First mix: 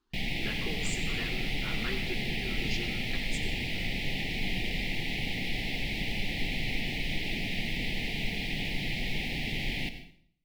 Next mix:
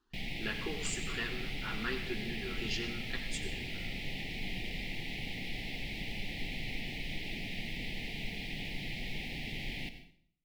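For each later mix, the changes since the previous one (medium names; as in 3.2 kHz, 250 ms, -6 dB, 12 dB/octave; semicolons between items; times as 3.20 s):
speech: add peaking EQ 1.7 kHz +3.5 dB 1 oct; background -7.0 dB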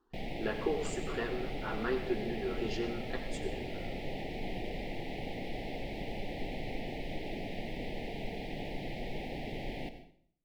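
master: add FFT filter 190 Hz 0 dB, 580 Hz +13 dB, 2.4 kHz -7 dB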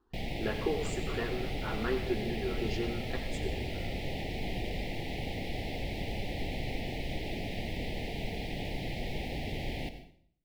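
background: add treble shelf 2.7 kHz +9 dB; master: add peaking EQ 71 Hz +11.5 dB 1.6 oct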